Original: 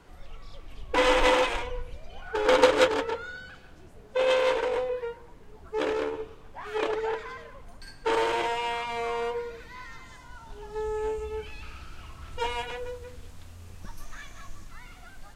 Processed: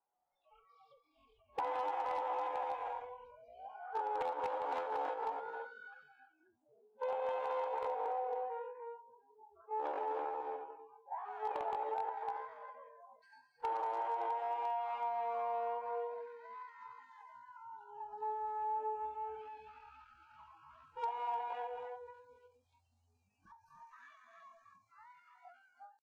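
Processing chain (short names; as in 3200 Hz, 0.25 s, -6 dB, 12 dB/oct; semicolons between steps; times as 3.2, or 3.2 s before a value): one-sided clip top -16 dBFS; reverb, pre-delay 19 ms, DRR 4.5 dB; tempo 0.59×; band-pass 810 Hz, Q 5.8; compressor 12:1, threshold -38 dBFS, peak gain reduction 13 dB; wavefolder -33.5 dBFS; spectral noise reduction 26 dB; ending taper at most 160 dB/s; gain +4.5 dB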